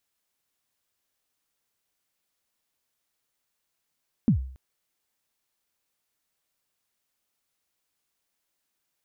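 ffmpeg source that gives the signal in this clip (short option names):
-f lavfi -i "aevalsrc='0.211*pow(10,-3*t/0.53)*sin(2*PI*(260*0.1/log(65/260)*(exp(log(65/260)*min(t,0.1)/0.1)-1)+65*max(t-0.1,0)))':d=0.28:s=44100"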